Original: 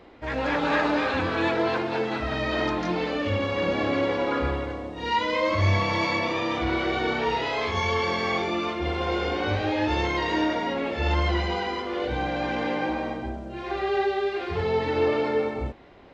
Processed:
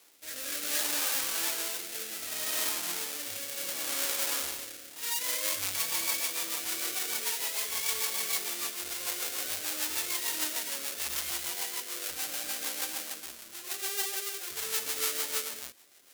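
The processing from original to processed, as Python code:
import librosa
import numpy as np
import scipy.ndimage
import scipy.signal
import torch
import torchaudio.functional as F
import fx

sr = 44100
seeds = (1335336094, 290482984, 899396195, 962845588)

y = fx.halfwave_hold(x, sr)
y = fx.rotary_switch(y, sr, hz=0.65, then_hz=6.7, switch_at_s=4.65)
y = np.diff(y, prepend=0.0)
y = y * 10.0 ** (1.5 / 20.0)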